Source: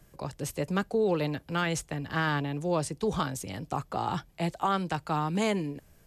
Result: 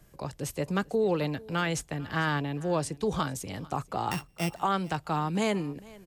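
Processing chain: 4.11–4.54 s: sorted samples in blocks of 16 samples; delay 445 ms -22 dB

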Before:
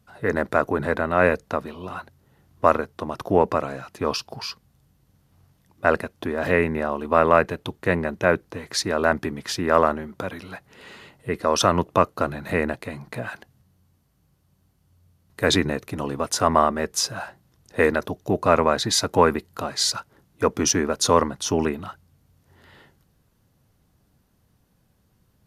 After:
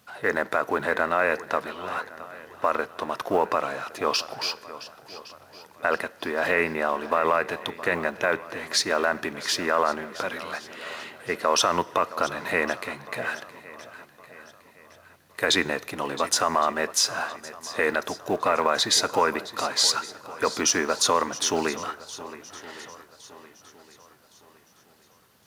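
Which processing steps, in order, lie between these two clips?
companding laws mixed up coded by mu; high-pass 1 kHz 6 dB/octave; treble shelf 5 kHz -5 dB; peak limiter -15 dBFS, peak gain reduction 9 dB; shuffle delay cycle 1113 ms, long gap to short 1.5:1, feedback 36%, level -16 dB; on a send at -20 dB: reverberation RT60 1.1 s, pre-delay 4 ms; on the sum: trim +5 dB

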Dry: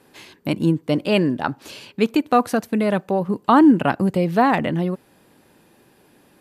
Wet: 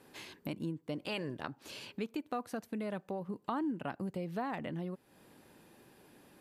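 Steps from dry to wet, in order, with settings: 1.01–1.47 s: spectral peaks clipped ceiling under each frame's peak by 12 dB; compression 2.5:1, threshold -37 dBFS, peak gain reduction 18 dB; trim -5.5 dB

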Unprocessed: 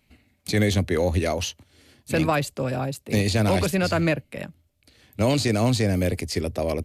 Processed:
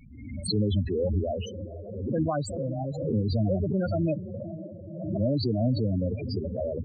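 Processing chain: echo that smears into a reverb 495 ms, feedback 54%, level -11 dB; loudest bins only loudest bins 8; swell ahead of each attack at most 51 dB/s; trim -3.5 dB

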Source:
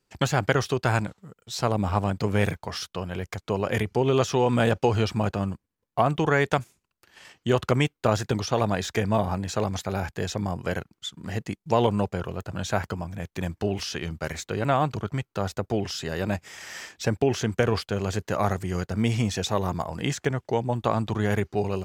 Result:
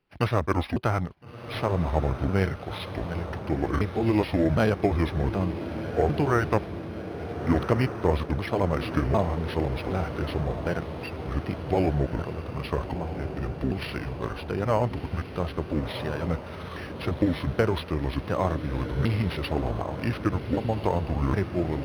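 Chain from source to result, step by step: sawtooth pitch modulation -8.5 st, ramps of 762 ms; echo that smears into a reverb 1372 ms, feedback 61%, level -9.5 dB; decimation joined by straight lines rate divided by 6×

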